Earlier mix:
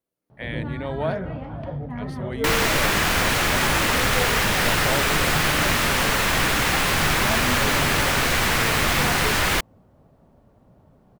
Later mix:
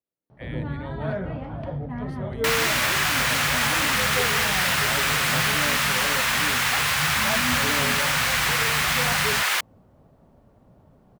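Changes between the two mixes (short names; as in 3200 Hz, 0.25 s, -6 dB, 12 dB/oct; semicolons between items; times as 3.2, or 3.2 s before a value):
speech -8.5 dB; second sound: add HPF 940 Hz 12 dB/oct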